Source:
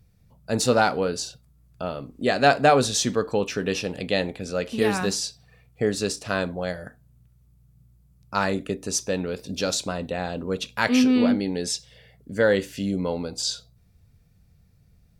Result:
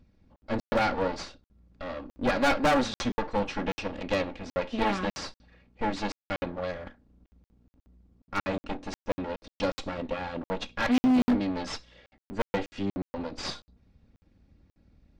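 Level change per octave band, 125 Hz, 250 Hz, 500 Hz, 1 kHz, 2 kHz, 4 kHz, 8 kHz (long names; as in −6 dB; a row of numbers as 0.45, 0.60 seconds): −7.5, −4.0, −7.0, −4.5, −5.5, −8.5, −17.0 decibels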